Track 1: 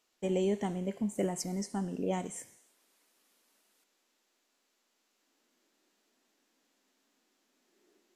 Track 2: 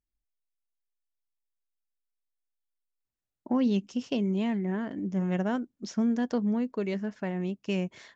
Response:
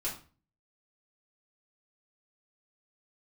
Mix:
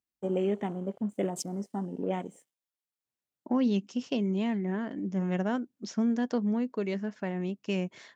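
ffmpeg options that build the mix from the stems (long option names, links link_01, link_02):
-filter_complex "[0:a]aeval=exprs='sgn(val(0))*max(abs(val(0))-0.00188,0)':channel_layout=same,afwtdn=0.00398,equalizer=frequency=3100:width_type=o:width=0.28:gain=5,volume=2dB[link_01];[1:a]volume=-0.5dB[link_02];[link_01][link_02]amix=inputs=2:normalize=0,highpass=130"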